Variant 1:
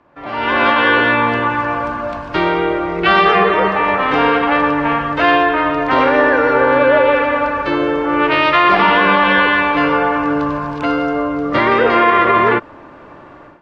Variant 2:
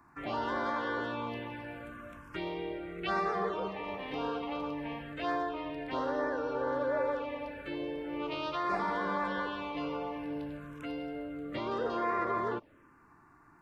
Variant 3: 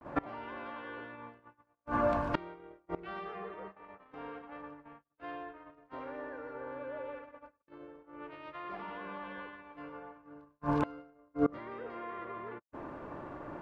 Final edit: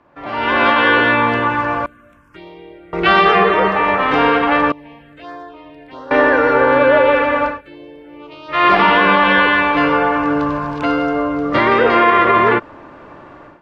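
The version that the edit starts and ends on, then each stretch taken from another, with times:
1
0:01.86–0:02.93: punch in from 2
0:04.72–0:06.11: punch in from 2
0:07.53–0:08.56: punch in from 2, crossfade 0.16 s
not used: 3

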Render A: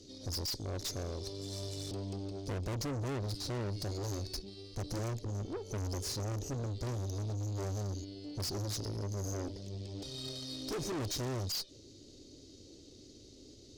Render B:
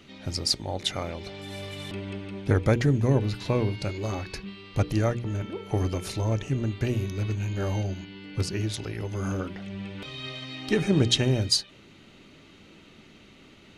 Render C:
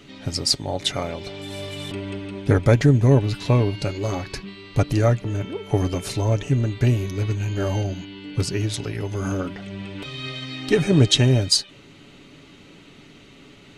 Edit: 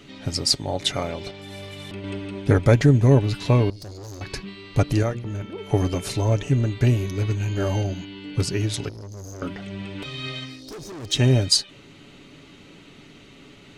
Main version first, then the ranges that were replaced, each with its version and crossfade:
C
0:01.31–0:02.04: punch in from B
0:03.70–0:04.21: punch in from A
0:05.03–0:05.58: punch in from B
0:08.89–0:09.42: punch in from A
0:10.51–0:11.14: punch in from A, crossfade 0.24 s

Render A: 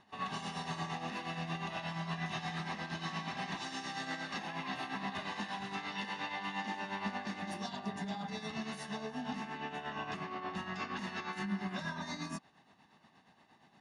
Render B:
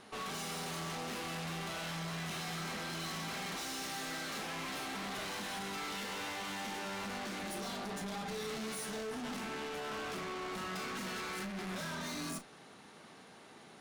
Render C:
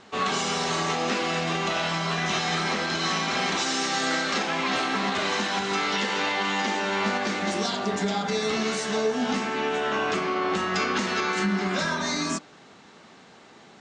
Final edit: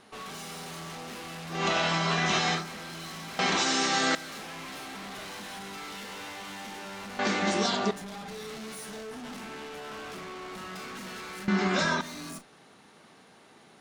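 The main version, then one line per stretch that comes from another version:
B
0:01.57–0:02.58: punch in from C, crossfade 0.16 s
0:03.39–0:04.15: punch in from C
0:07.19–0:07.91: punch in from C
0:11.48–0:12.01: punch in from C
not used: A

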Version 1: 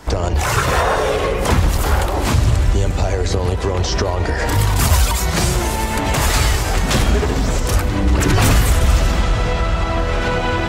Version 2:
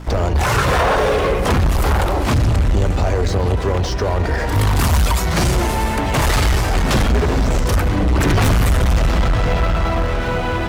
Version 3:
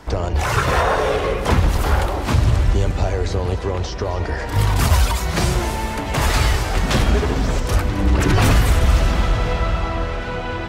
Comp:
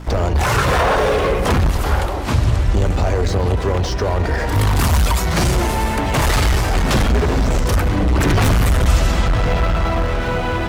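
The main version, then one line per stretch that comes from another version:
2
0:01.71–0:02.74: punch in from 3
0:08.86–0:09.26: punch in from 1

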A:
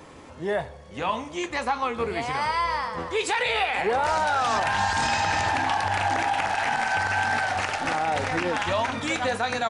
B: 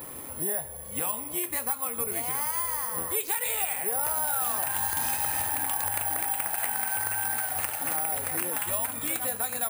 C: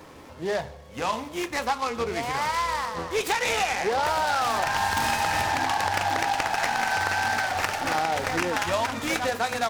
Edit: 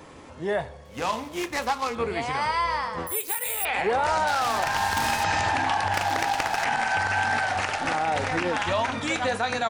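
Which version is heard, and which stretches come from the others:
A
0:00.85–0:01.95: punch in from C
0:03.07–0:03.65: punch in from B
0:04.28–0:05.24: punch in from C
0:05.94–0:06.64: punch in from C

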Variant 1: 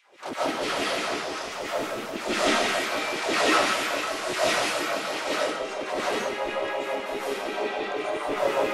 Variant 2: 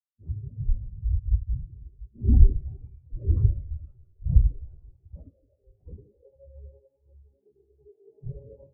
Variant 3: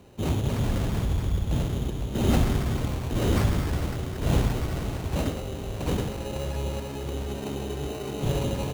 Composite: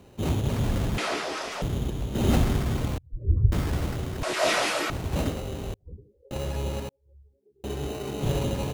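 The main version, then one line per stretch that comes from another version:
3
0:00.98–0:01.62: punch in from 1
0:02.98–0:03.52: punch in from 2
0:04.23–0:04.90: punch in from 1
0:05.74–0:06.31: punch in from 2
0:06.89–0:07.64: punch in from 2

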